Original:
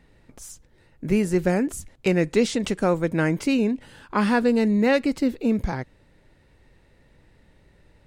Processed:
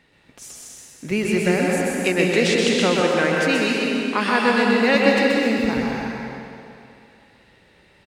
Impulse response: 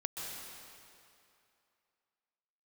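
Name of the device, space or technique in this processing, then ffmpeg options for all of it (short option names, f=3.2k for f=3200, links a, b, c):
PA in a hall: -filter_complex "[0:a]highpass=f=190:p=1,equalizer=f=3k:t=o:w=2:g=7.5,aecho=1:1:128:0.562[a];[1:a]atrim=start_sample=2205[b];[a][b]afir=irnorm=-1:irlink=0,asettb=1/sr,asplit=3[c][d][e];[c]atrim=end=3.004[f];[d]atrim=start=3:end=4.95,asetpts=PTS-STARTPTS,afade=t=in:d=0.004:c=qsin,afade=t=out:st=1.946:d=0.004:c=qsin,highpass=190[g];[e]atrim=start=4.946[h];[f][g]acrossfade=d=0.004:c1=hsin:c2=qsin[i];[i][h]acrossfade=d=0.004:c1=qsin:c2=hsin,volume=1.5dB"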